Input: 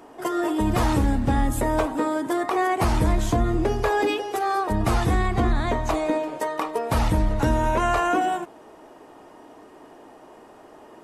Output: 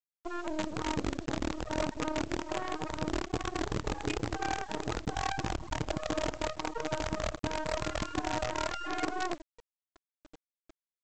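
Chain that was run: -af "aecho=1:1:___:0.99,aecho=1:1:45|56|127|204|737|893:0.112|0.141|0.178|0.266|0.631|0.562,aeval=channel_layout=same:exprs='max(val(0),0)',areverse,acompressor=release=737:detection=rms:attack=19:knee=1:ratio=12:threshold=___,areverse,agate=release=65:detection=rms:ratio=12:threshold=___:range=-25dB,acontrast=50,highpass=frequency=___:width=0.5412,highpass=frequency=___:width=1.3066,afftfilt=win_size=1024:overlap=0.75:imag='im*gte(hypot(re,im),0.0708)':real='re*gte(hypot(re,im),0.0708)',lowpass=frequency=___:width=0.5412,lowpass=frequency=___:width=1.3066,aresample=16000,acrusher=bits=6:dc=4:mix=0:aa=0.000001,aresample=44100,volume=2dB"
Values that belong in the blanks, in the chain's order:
6.4, -31dB, -40dB, 43, 43, 2800, 2800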